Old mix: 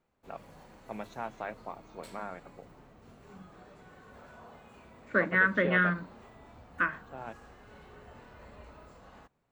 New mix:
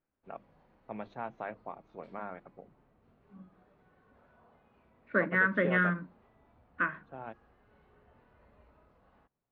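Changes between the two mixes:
background −11.0 dB
master: add high-frequency loss of the air 280 metres

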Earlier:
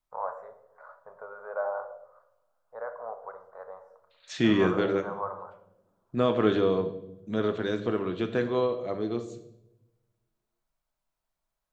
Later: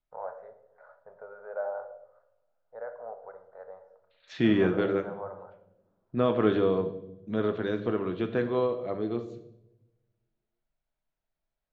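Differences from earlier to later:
first voice: add parametric band 1,100 Hz −13 dB 0.48 octaves
master: add high-frequency loss of the air 200 metres

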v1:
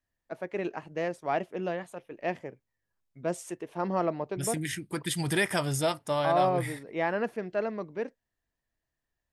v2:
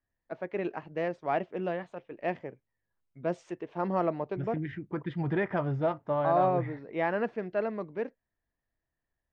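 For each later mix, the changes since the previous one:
second voice: add low-pass filter 1,400 Hz 12 dB per octave
master: add Gaussian smoothing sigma 2 samples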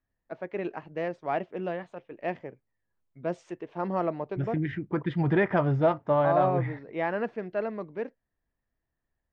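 second voice +5.5 dB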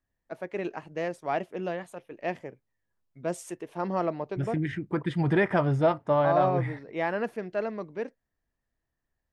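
master: remove Gaussian smoothing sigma 2 samples

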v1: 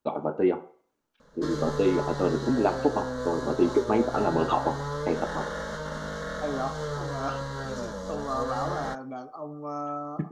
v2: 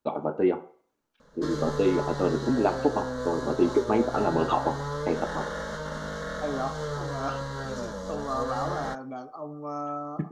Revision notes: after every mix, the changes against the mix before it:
nothing changed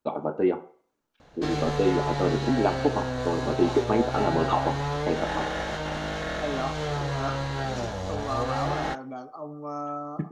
background: remove phaser with its sweep stopped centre 500 Hz, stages 8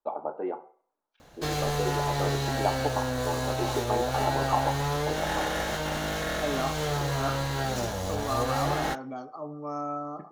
first voice: add resonant band-pass 810 Hz, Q 1.7
background: remove high-frequency loss of the air 92 metres

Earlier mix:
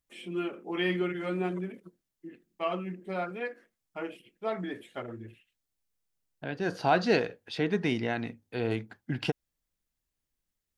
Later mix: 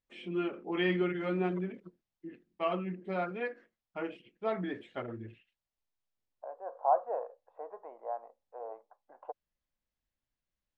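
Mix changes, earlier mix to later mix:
second voice: add Chebyshev band-pass filter 540–1,100 Hz, order 3
master: add high-frequency loss of the air 150 metres

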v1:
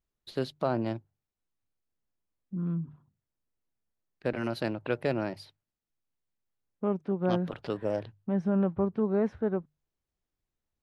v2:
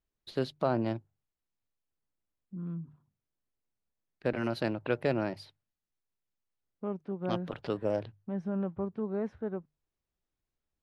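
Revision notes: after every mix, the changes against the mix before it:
first voice: add high-shelf EQ 10,000 Hz −7 dB
second voice −6.5 dB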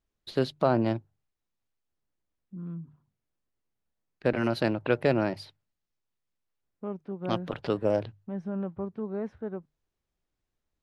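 first voice +5.0 dB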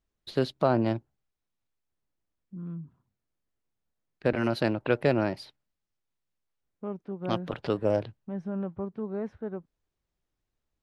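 master: remove mains-hum notches 50/100/150 Hz

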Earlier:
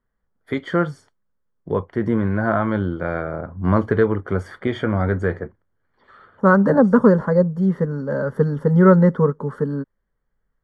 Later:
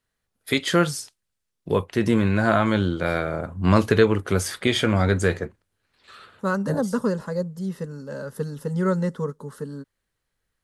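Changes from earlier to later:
second voice −10.5 dB
master: remove Savitzky-Golay smoothing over 41 samples

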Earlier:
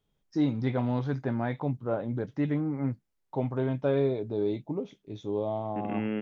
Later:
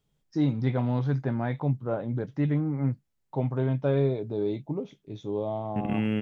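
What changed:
second voice: remove band-pass filter 230–2,100 Hz
master: add parametric band 140 Hz +6.5 dB 0.42 octaves

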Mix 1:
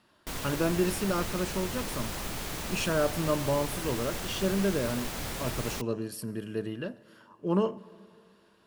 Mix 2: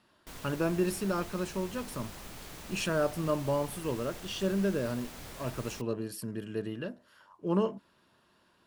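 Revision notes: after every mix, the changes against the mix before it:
background −10.0 dB
reverb: off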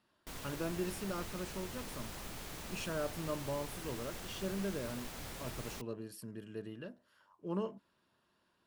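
speech −9.0 dB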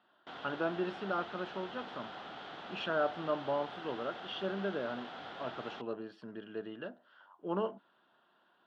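speech +3.5 dB
master: add loudspeaker in its box 240–3,500 Hz, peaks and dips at 750 Hz +10 dB, 1,400 Hz +8 dB, 2,300 Hz −6 dB, 3,300 Hz +7 dB

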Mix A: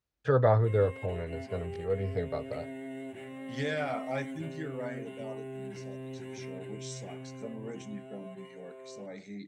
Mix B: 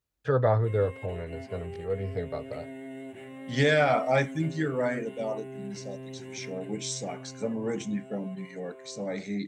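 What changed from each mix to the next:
second voice +10.5 dB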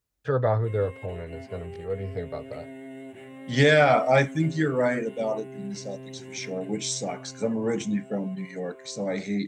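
second voice +4.5 dB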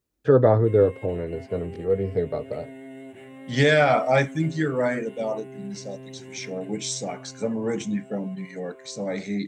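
first voice: add parametric band 300 Hz +14 dB 1.7 octaves

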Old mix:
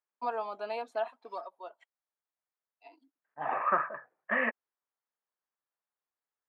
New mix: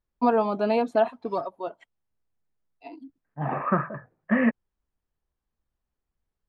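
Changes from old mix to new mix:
first voice +8.0 dB
master: remove high-pass filter 680 Hz 12 dB per octave

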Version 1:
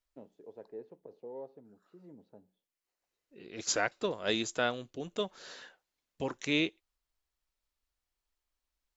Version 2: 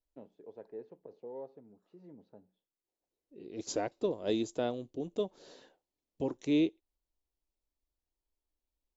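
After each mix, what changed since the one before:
second voice: add drawn EQ curve 210 Hz 0 dB, 300 Hz +5 dB, 930 Hz −5 dB, 1,400 Hz −16 dB, 3,700 Hz −9 dB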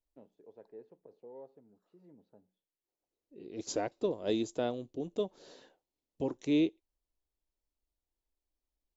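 first voice −5.5 dB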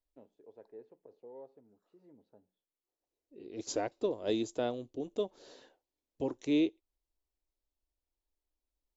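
master: add parametric band 170 Hz −8 dB 0.46 octaves

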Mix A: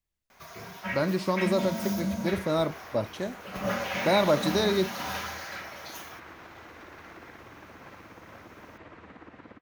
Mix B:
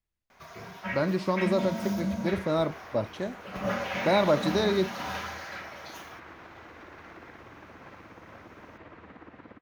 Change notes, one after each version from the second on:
master: add low-pass filter 3,900 Hz 6 dB per octave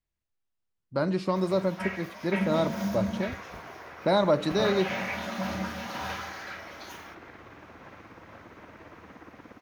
first sound: entry +0.95 s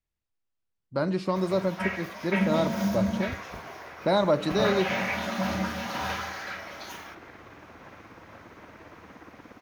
first sound +3.5 dB

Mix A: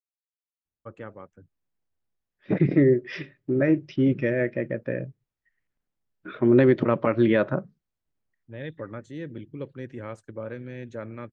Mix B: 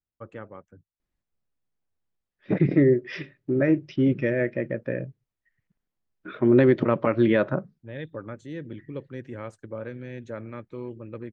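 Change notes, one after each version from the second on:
first voice: entry −0.65 s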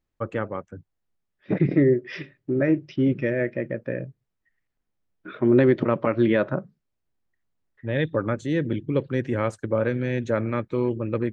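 first voice +12.0 dB
second voice: entry −1.00 s

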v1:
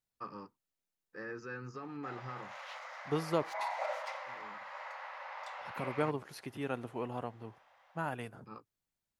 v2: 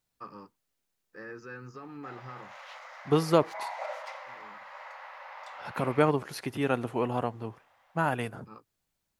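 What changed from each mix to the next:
second voice +9.5 dB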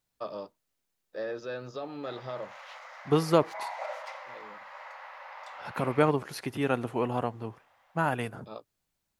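first voice: remove phaser with its sweep stopped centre 1,500 Hz, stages 4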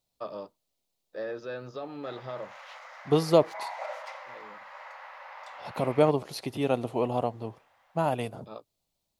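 first voice: add high-frequency loss of the air 72 metres
second voice: add graphic EQ with 15 bands 630 Hz +6 dB, 1,600 Hz −12 dB, 4,000 Hz +5 dB

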